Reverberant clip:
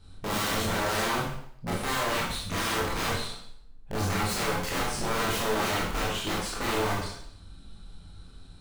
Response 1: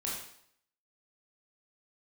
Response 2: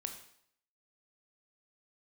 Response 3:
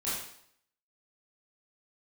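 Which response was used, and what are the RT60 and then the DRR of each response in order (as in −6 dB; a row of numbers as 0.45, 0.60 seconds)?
1; 0.65, 0.65, 0.65 seconds; −5.0, 5.0, −10.5 decibels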